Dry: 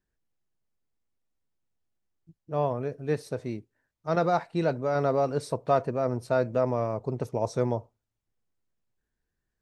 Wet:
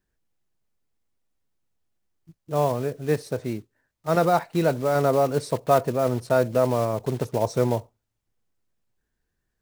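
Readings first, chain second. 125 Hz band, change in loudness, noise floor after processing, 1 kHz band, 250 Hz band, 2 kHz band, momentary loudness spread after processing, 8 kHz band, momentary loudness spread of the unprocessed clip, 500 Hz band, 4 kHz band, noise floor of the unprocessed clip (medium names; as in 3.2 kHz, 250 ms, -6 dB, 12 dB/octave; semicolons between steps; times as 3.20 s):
+4.5 dB, +4.5 dB, -79 dBFS, +4.5 dB, +4.5 dB, +5.0 dB, 9 LU, no reading, 9 LU, +4.5 dB, +7.0 dB, -84 dBFS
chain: block-companded coder 5-bit; trim +4.5 dB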